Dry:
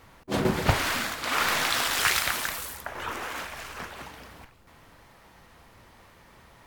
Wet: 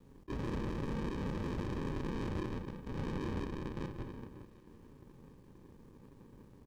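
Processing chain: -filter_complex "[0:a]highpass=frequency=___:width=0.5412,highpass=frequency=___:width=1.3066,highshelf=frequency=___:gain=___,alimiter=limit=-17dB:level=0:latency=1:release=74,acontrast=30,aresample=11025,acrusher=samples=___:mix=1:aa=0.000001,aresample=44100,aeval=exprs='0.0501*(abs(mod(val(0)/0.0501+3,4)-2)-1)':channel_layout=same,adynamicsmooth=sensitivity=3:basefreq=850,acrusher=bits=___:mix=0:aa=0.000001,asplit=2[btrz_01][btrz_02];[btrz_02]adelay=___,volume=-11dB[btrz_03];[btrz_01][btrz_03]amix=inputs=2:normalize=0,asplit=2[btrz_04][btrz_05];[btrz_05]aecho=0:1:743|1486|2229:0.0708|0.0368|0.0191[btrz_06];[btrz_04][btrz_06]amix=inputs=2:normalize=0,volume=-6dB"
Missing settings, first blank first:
290, 290, 3900, 7.5, 16, 10, 32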